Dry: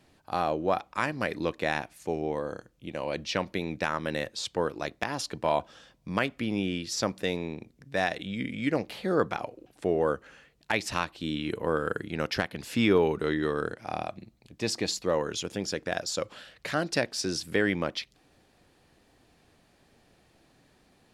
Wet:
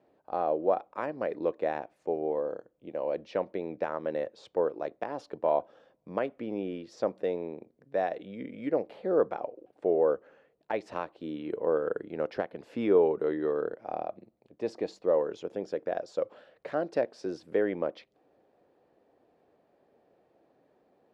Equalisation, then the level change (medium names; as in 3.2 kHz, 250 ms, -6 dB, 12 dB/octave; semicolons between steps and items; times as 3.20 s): band-pass filter 520 Hz, Q 1.7; +3.0 dB